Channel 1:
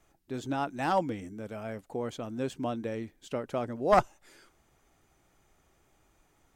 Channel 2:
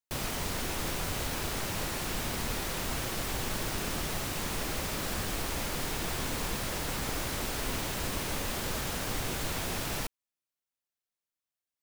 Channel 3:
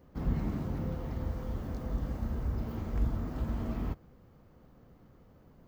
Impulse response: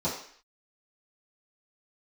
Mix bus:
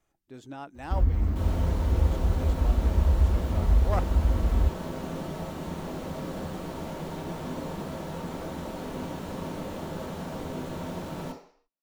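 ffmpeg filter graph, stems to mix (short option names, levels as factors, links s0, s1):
-filter_complex "[0:a]volume=0.355[s0];[1:a]equalizer=f=400:w=0.32:g=11.5,adelay=1250,volume=0.188,asplit=2[s1][s2];[s2]volume=0.447[s3];[2:a]lowshelf=f=100:t=q:w=3:g=8.5,alimiter=limit=0.178:level=0:latency=1:release=262,adelay=750,volume=1.19[s4];[3:a]atrim=start_sample=2205[s5];[s3][s5]afir=irnorm=-1:irlink=0[s6];[s0][s1][s4][s6]amix=inputs=4:normalize=0"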